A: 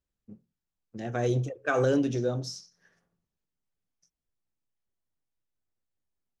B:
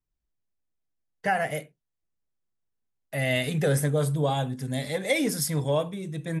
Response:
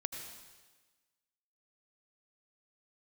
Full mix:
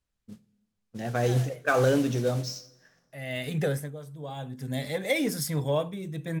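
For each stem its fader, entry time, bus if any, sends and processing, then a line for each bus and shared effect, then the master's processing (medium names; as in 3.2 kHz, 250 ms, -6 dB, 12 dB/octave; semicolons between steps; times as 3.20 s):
+2.5 dB, 0.00 s, send -16.5 dB, peaking EQ 340 Hz -7 dB 0.52 oct; modulation noise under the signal 20 dB
-1.5 dB, 0.00 s, no send, auto duck -17 dB, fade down 0.40 s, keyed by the first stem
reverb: on, RT60 1.3 s, pre-delay 73 ms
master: decimation joined by straight lines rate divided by 2×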